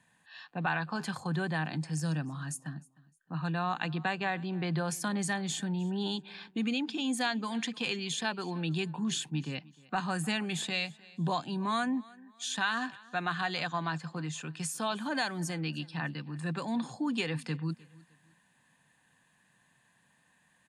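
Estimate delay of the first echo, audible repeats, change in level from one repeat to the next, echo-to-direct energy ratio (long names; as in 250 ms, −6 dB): 306 ms, 2, −10.0 dB, −22.5 dB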